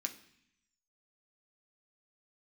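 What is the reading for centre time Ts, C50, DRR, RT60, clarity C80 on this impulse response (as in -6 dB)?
9 ms, 13.0 dB, 4.0 dB, 0.65 s, 16.5 dB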